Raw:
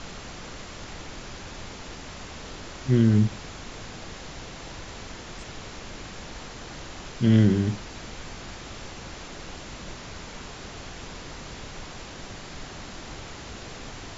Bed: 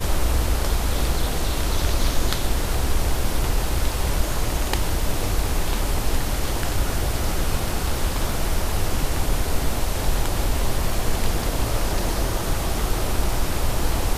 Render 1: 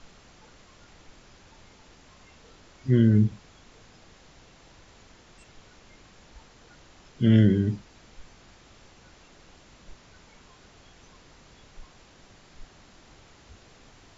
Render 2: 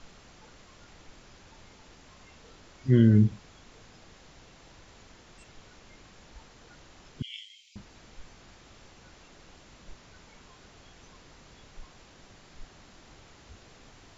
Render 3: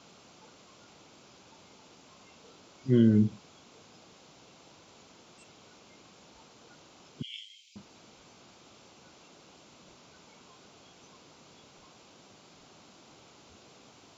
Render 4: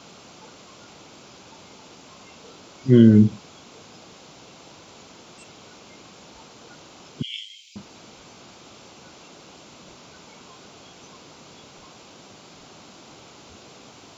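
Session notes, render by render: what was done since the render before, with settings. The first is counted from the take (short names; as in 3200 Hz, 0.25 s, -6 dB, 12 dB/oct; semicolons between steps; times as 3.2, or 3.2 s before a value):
noise print and reduce 14 dB
7.22–7.76 Chebyshev high-pass 2200 Hz, order 8
HPF 160 Hz 12 dB/oct; bell 1800 Hz -10 dB 0.4 oct
gain +9.5 dB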